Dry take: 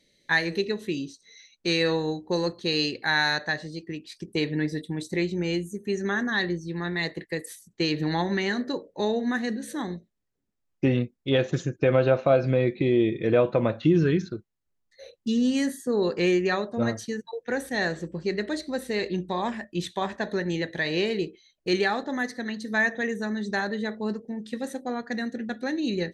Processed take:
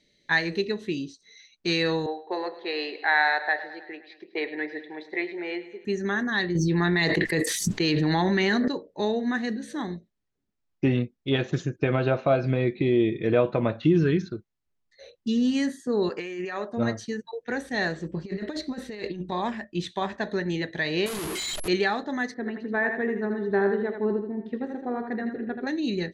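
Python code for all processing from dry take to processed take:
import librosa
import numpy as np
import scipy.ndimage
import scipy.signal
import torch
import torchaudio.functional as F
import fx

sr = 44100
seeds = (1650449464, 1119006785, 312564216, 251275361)

y = fx.chain(x, sr, fx.cabinet(low_hz=380.0, low_slope=24, high_hz=3400.0, hz=(730.0, 2000.0, 2900.0), db=(8, 6, -6)),
    fx.echo_feedback(ms=105, feedback_pct=59, wet_db=-15), at=(2.06, 5.85))
y = fx.chain(y, sr, fx.resample_bad(factor=2, down='none', up='hold'),
    fx.env_flatten(amount_pct=100), at=(6.55, 8.68))
y = fx.chain(y, sr, fx.highpass(hz=570.0, slope=6),
    fx.peak_eq(hz=3900.0, db=-10.5, octaves=0.4),
    fx.over_compress(threshold_db=-32.0, ratio=-1.0), at=(16.09, 16.73))
y = fx.chain(y, sr, fx.over_compress(threshold_db=-31.0, ratio=-0.5),
    fx.resample_linear(factor=2), at=(18.05, 19.32))
y = fx.chain(y, sr, fx.clip_1bit(),
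    fx.high_shelf(hz=8500.0, db=9.0),
    fx.resample_bad(factor=4, down='filtered', up='zero_stuff'), at=(21.06, 21.68))
y = fx.chain(y, sr, fx.lowpass(hz=1600.0, slope=12),
    fx.peak_eq(hz=400.0, db=11.5, octaves=0.25),
    fx.echo_feedback(ms=81, feedback_pct=38, wet_db=-6.0), at=(22.34, 25.67))
y = scipy.signal.sosfilt(scipy.signal.butter(2, 6200.0, 'lowpass', fs=sr, output='sos'), y)
y = fx.notch(y, sr, hz=520.0, q=12.0)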